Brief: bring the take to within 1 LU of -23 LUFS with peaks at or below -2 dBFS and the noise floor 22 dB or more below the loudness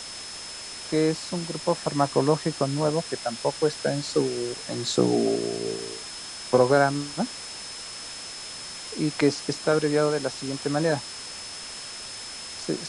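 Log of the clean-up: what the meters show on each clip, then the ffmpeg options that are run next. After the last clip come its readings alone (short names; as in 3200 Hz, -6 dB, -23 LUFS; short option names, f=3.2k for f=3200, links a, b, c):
steady tone 5200 Hz; tone level -39 dBFS; noise floor -38 dBFS; noise floor target -49 dBFS; loudness -26.5 LUFS; peak -7.0 dBFS; loudness target -23.0 LUFS
-> -af "bandreject=f=5.2k:w=30"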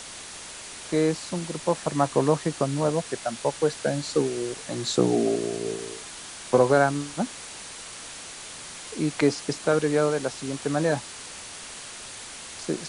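steady tone none; noise floor -41 dBFS; noise floor target -48 dBFS
-> -af "afftdn=nr=7:nf=-41"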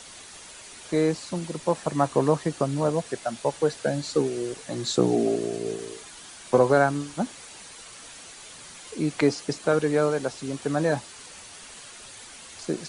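noise floor -45 dBFS; noise floor target -48 dBFS
-> -af "afftdn=nr=6:nf=-45"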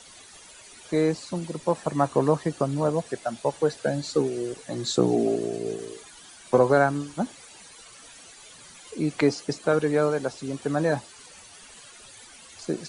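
noise floor -49 dBFS; loudness -26.0 LUFS; peak -7.0 dBFS; loudness target -23.0 LUFS
-> -af "volume=3dB"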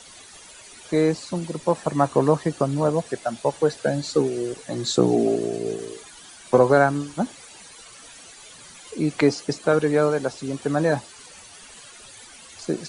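loudness -23.0 LUFS; peak -4.0 dBFS; noise floor -46 dBFS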